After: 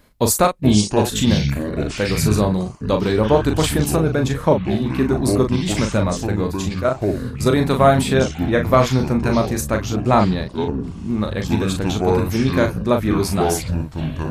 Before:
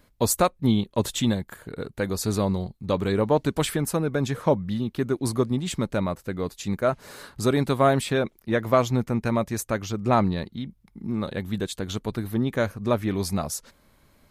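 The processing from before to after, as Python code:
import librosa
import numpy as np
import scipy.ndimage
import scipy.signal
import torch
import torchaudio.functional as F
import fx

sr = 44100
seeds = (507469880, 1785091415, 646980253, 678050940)

y = fx.level_steps(x, sr, step_db=10, at=(6.69, 7.46))
y = fx.doubler(y, sr, ms=38.0, db=-6)
y = fx.echo_pitch(y, sr, ms=323, semitones=-7, count=3, db_per_echo=-6.0)
y = y * librosa.db_to_amplitude(5.0)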